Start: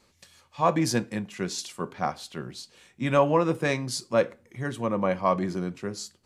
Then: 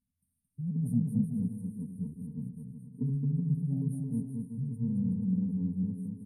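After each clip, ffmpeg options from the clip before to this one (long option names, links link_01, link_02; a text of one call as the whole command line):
ffmpeg -i in.wav -filter_complex "[0:a]afftfilt=real='re*(1-between(b*sr/4096,270,8500))':imag='im*(1-between(b*sr/4096,270,8500))':win_size=4096:overlap=0.75,afwtdn=0.0126,asplit=2[link_01][link_02];[link_02]aecho=0:1:220|374|481.8|557.3|610.1:0.631|0.398|0.251|0.158|0.1[link_03];[link_01][link_03]amix=inputs=2:normalize=0" out.wav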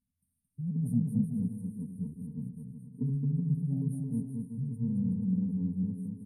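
ffmpeg -i in.wav -af anull out.wav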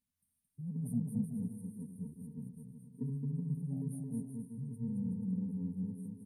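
ffmpeg -i in.wav -af "lowshelf=frequency=350:gain=-10.5,volume=1.5dB" out.wav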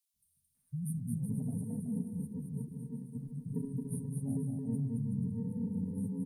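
ffmpeg -i in.wav -filter_complex "[0:a]equalizer=frequency=140:width_type=o:width=0.22:gain=7,acrossover=split=180|2800[link_01][link_02][link_03];[link_01]adelay=140[link_04];[link_02]adelay=550[link_05];[link_04][link_05][link_03]amix=inputs=3:normalize=0,afftfilt=real='re*lt(hypot(re,im),0.158)':imag='im*lt(hypot(re,im),0.158)':win_size=1024:overlap=0.75,volume=6.5dB" out.wav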